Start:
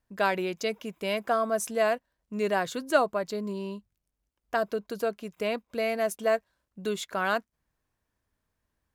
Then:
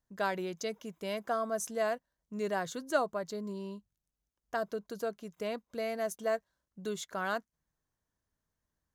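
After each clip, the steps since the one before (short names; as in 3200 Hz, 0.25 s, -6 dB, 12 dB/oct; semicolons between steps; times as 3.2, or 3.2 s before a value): thirty-one-band EQ 160 Hz +5 dB, 2500 Hz -7 dB, 6300 Hz +6 dB; gain -6.5 dB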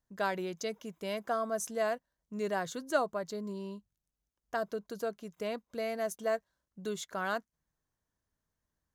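nothing audible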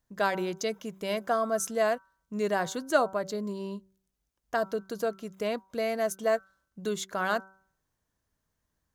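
de-hum 191.4 Hz, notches 8; gain +5.5 dB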